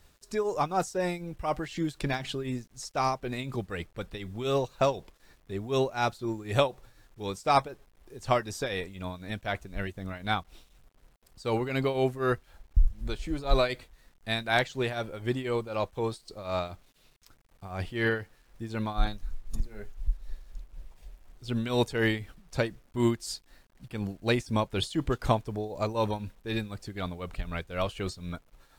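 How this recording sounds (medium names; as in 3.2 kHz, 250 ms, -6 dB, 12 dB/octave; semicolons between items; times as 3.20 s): tremolo triangle 4 Hz, depth 80%; a quantiser's noise floor 12-bit, dither none; AAC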